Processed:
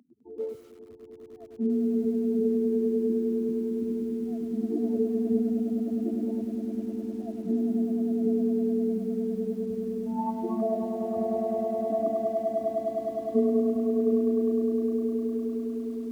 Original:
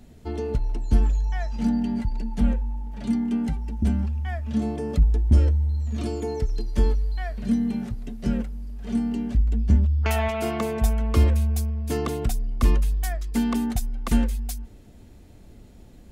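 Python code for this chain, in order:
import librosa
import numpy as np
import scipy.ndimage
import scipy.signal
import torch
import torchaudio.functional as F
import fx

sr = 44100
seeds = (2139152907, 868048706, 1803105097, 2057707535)

y = fx.spec_expand(x, sr, power=4.0)
y = fx.echo_swell(y, sr, ms=102, loudest=8, wet_db=-8.5)
y = fx.formant_shift(y, sr, semitones=5)
y = scipy.signal.sosfilt(scipy.signal.butter(4, 240.0, 'highpass', fs=sr, output='sos'), y)
y = fx.echo_crushed(y, sr, ms=105, feedback_pct=55, bits=8, wet_db=-13.0)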